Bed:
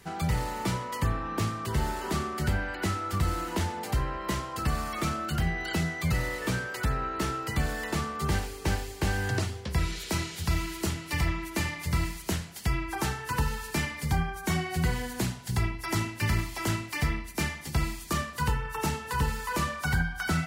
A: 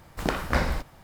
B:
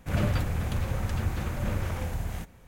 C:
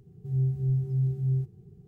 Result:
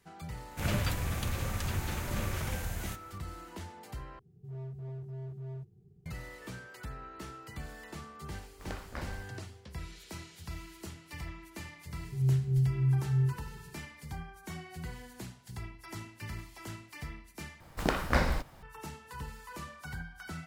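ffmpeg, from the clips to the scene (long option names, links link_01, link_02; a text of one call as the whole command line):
ffmpeg -i bed.wav -i cue0.wav -i cue1.wav -i cue2.wav -filter_complex "[3:a]asplit=2[link_01][link_02];[1:a]asplit=2[link_03][link_04];[0:a]volume=-14.5dB[link_05];[2:a]highshelf=frequency=2000:gain=10.5[link_06];[link_01]asoftclip=type=hard:threshold=-30dB[link_07];[link_05]asplit=3[link_08][link_09][link_10];[link_08]atrim=end=4.194[link_11];[link_07]atrim=end=1.87,asetpts=PTS-STARTPTS,volume=-9.5dB[link_12];[link_09]atrim=start=6.056:end=17.604[link_13];[link_04]atrim=end=1.03,asetpts=PTS-STARTPTS,volume=-2.5dB[link_14];[link_10]atrim=start=18.626[link_15];[link_06]atrim=end=2.67,asetpts=PTS-STARTPTS,volume=-5.5dB,afade=type=in:duration=0.004:curve=hsin,afade=type=out:start_time=2.666:duration=0.004:curve=hsin,adelay=510[link_16];[link_03]atrim=end=1.03,asetpts=PTS-STARTPTS,volume=-17dB,afade=type=in:duration=0.004:curve=hsin,afade=type=out:start_time=1.026:duration=0.004:curve=hsin,adelay=371322S[link_17];[link_02]atrim=end=1.87,asetpts=PTS-STARTPTS,volume=-1dB,afade=type=in:duration=0.004:curve=hsin,afade=type=out:start_time=1.866:duration=0.004:curve=hsin,adelay=11880[link_18];[link_11][link_12]acrossfade=duration=0.004:curve1=hsin:curve2=hsin[link_19];[link_19][link_13]acrossfade=duration=0.004:curve1=hsin:curve2=hsin[link_20];[link_20][link_14]acrossfade=duration=0.004:curve1=hsin:curve2=hsin[link_21];[link_21][link_15]acrossfade=duration=0.004:curve1=hsin:curve2=hsin[link_22];[link_22][link_16][link_17][link_18]amix=inputs=4:normalize=0" out.wav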